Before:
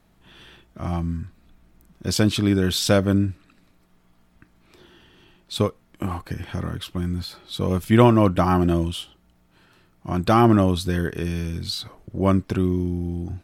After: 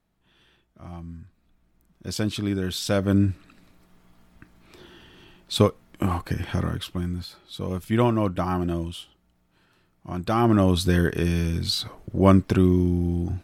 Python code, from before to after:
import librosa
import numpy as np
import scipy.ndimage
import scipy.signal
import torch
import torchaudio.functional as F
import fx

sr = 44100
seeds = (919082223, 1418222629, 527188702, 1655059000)

y = fx.gain(x, sr, db=fx.line((0.91, -13.0), (2.33, -6.5), (2.89, -6.5), (3.3, 3.0), (6.57, 3.0), (7.41, -6.5), (10.34, -6.5), (10.83, 3.0)))